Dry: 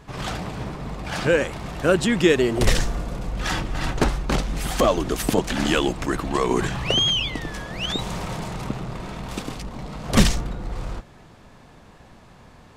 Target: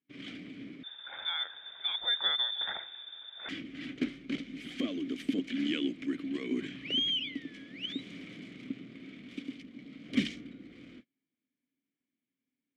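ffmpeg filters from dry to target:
-filter_complex "[0:a]highpass=f=140:p=1,agate=range=0.0447:threshold=0.0126:ratio=16:detection=peak,asplit=3[s0][s1][s2];[s0]bandpass=f=270:t=q:w=8,volume=1[s3];[s1]bandpass=f=2290:t=q:w=8,volume=0.501[s4];[s2]bandpass=f=3010:t=q:w=8,volume=0.355[s5];[s3][s4][s5]amix=inputs=3:normalize=0,equalizer=f=770:w=1.5:g=2,asettb=1/sr,asplit=3[s6][s7][s8];[s6]atrim=end=0.834[s9];[s7]atrim=start=0.83:end=3.49,asetpts=PTS-STARTPTS,afade=t=in:d=0.004:c=qsin,afade=t=out:st=2.656:d=0.004:c=qsin,lowpass=f=3200:t=q:w=0.5098,lowpass=f=3200:t=q:w=0.6013,lowpass=f=3200:t=q:w=0.9,lowpass=f=3200:t=q:w=2.563,afreqshift=-3800[s10];[s8]atrim=start=3.486[s11];[s9][s10]acrossfade=d=0.004:c1=hsin:c2=qsin[s12];[s12][s11]acrossfade=d=0.004:c1=qsin:c2=hsin"

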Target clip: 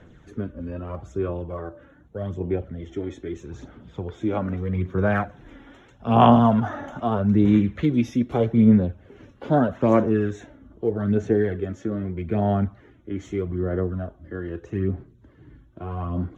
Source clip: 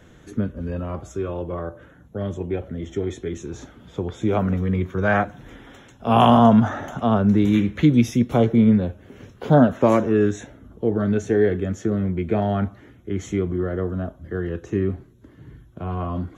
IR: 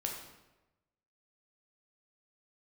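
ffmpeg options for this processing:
-af "aemphasis=mode=reproduction:type=50fm,aphaser=in_gain=1:out_gain=1:delay=3.6:decay=0.45:speed=0.8:type=sinusoidal,volume=0.596"

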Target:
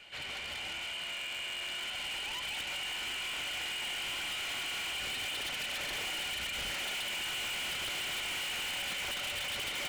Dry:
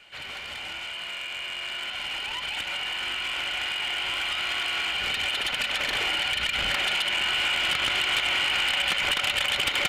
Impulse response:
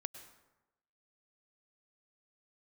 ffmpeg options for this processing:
-af "asoftclip=type=tanh:threshold=0.0188,equalizer=f=1300:t=o:w=1:g=-3.5"

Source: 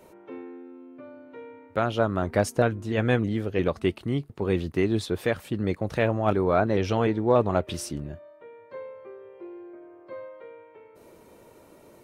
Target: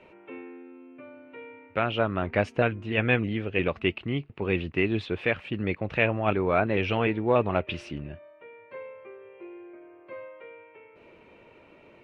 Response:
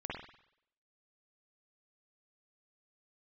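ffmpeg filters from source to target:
-af "lowpass=f=2600:t=q:w=4.5,volume=0.75"

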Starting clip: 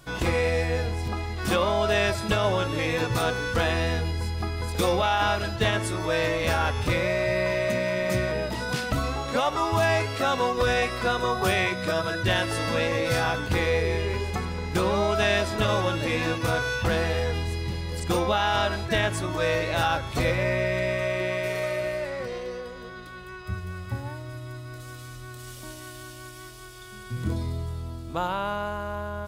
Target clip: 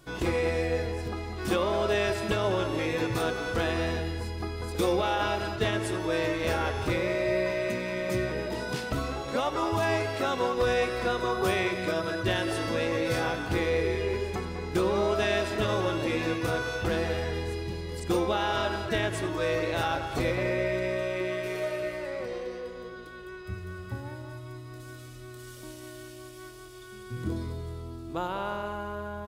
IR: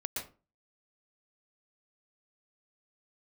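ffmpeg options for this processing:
-filter_complex "[0:a]equalizer=f=360:w=2.1:g=7.5,asplit=2[s0][s1];[s1]adelay=200,highpass=300,lowpass=3400,asoftclip=type=hard:threshold=0.119,volume=0.398[s2];[s0][s2]amix=inputs=2:normalize=0,asplit=2[s3][s4];[1:a]atrim=start_sample=2205,asetrate=28224,aresample=44100,adelay=92[s5];[s4][s5]afir=irnorm=-1:irlink=0,volume=0.1[s6];[s3][s6]amix=inputs=2:normalize=0,volume=0.531"

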